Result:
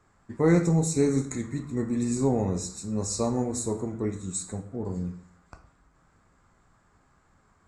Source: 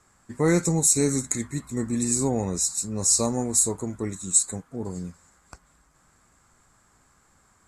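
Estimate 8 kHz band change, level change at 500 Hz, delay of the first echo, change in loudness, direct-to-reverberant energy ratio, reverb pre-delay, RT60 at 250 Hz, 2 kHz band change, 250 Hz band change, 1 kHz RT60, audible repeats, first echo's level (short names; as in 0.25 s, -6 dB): -13.0 dB, +0.5 dB, none, -4.0 dB, 6.5 dB, 11 ms, 0.70 s, -3.5 dB, +0.5 dB, 0.50 s, none, none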